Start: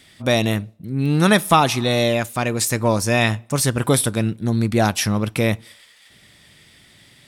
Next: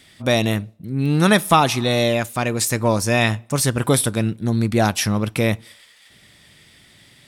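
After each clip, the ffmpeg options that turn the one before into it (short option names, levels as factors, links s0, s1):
-af anull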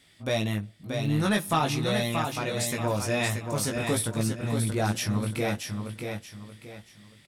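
-filter_complex "[0:a]flanger=delay=18:depth=2.1:speed=0.48,asoftclip=type=tanh:threshold=0.335,asplit=2[s0][s1];[s1]aecho=0:1:630|1260|1890|2520:0.531|0.17|0.0544|0.0174[s2];[s0][s2]amix=inputs=2:normalize=0,volume=0.501"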